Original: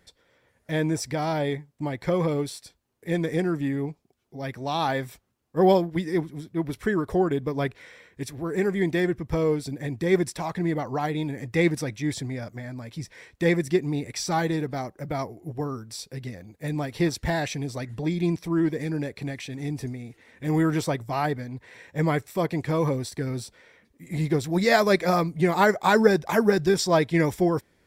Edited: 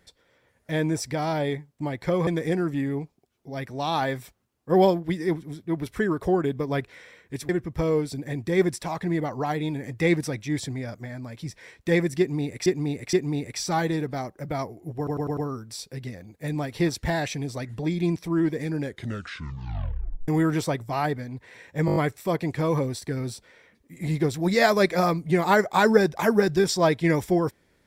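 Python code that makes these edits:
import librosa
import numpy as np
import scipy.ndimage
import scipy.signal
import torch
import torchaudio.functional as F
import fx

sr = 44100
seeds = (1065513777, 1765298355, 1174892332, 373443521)

y = fx.edit(x, sr, fx.cut(start_s=2.27, length_s=0.87),
    fx.cut(start_s=8.36, length_s=0.67),
    fx.repeat(start_s=13.73, length_s=0.47, count=3),
    fx.stutter(start_s=15.57, slice_s=0.1, count=5),
    fx.tape_stop(start_s=19.01, length_s=1.47),
    fx.stutter(start_s=22.06, slice_s=0.02, count=6), tone=tone)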